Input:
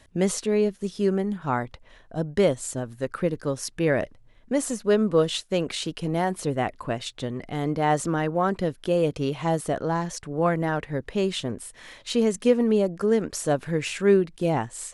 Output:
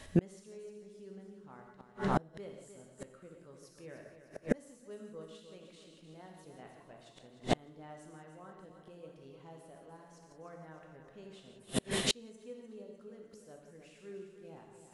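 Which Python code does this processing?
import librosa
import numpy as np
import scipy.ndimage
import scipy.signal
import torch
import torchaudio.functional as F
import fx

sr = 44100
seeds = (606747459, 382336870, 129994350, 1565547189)

p1 = x + fx.echo_feedback(x, sr, ms=303, feedback_pct=51, wet_db=-9, dry=0)
p2 = fx.rider(p1, sr, range_db=4, speed_s=2.0)
p3 = fx.low_shelf(p2, sr, hz=150.0, db=-2.5)
p4 = fx.rev_gated(p3, sr, seeds[0], gate_ms=200, shape='flat', drr_db=1.0)
p5 = fx.gate_flip(p4, sr, shuts_db=-19.0, range_db=-35)
y = p5 * 10.0 ** (4.0 / 20.0)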